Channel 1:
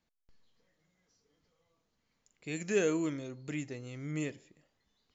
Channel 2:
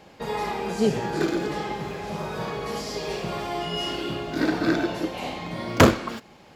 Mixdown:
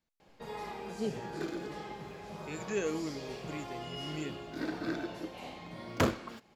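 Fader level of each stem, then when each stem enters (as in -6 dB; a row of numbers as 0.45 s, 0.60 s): -4.5 dB, -13.0 dB; 0.00 s, 0.20 s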